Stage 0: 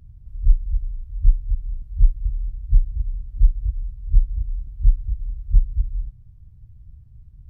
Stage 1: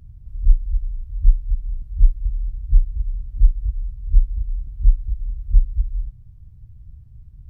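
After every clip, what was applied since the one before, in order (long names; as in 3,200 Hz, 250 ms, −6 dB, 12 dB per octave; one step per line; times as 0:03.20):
dynamic equaliser 120 Hz, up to −6 dB, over −32 dBFS, Q 0.73
level +2.5 dB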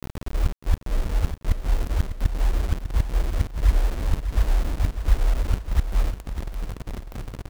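gate with flip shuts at −12 dBFS, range −28 dB
bit-depth reduction 6 bits, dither none
repeating echo 599 ms, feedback 53%, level −10 dB
level +4.5 dB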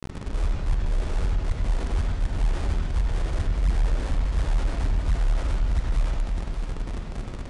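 convolution reverb RT60 1.4 s, pre-delay 64 ms, DRR 0.5 dB
soft clipping −15 dBFS, distortion −14 dB
downsampling to 22,050 Hz
level −1 dB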